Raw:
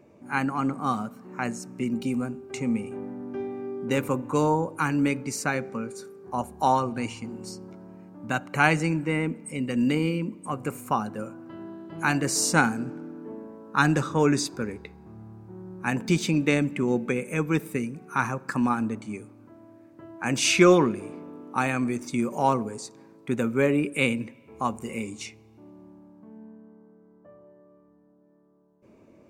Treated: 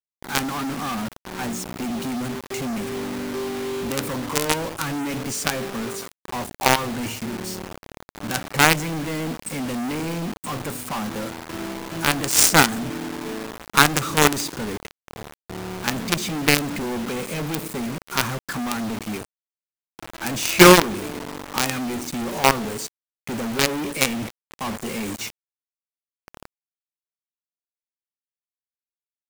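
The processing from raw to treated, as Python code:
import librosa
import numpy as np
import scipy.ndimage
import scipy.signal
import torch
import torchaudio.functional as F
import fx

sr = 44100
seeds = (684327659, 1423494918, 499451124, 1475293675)

y = fx.high_shelf(x, sr, hz=2700.0, db=7.5, at=(12.23, 14.41))
y = fx.quant_companded(y, sr, bits=2)
y = y * 10.0 ** (-1.0 / 20.0)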